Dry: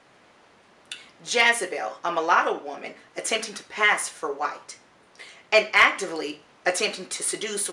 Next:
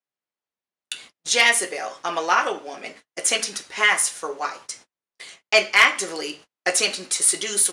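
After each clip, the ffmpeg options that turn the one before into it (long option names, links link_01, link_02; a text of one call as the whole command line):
ffmpeg -i in.wav -af "highshelf=frequency=3300:gain=11.5,agate=range=-41dB:threshold=-42dB:ratio=16:detection=peak,volume=-1dB" out.wav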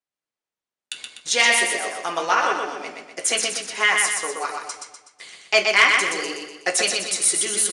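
ffmpeg -i in.wav -filter_complex "[0:a]asplit=2[link_01][link_02];[link_02]aecho=0:1:124|248|372|496|620|744:0.631|0.29|0.134|0.0614|0.0283|0.013[link_03];[link_01][link_03]amix=inputs=2:normalize=0,aresample=22050,aresample=44100,volume=-1dB" out.wav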